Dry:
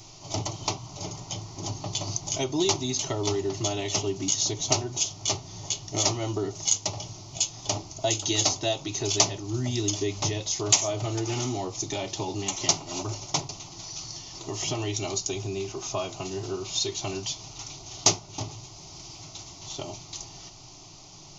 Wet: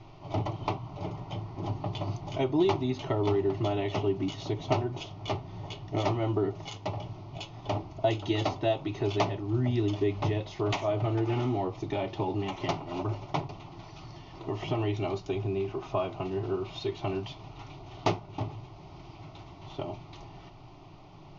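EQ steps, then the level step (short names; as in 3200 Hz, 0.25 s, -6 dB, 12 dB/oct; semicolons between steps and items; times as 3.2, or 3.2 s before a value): Bessel low-pass 1900 Hz, order 4; +1.5 dB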